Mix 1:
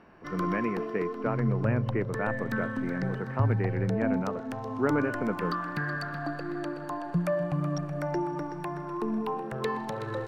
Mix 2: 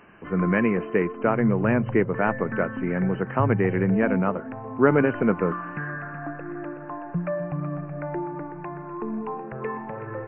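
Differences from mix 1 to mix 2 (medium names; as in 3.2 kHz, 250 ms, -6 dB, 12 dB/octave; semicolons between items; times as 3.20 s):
speech +9.0 dB; background: add steep low-pass 2.6 kHz 72 dB/octave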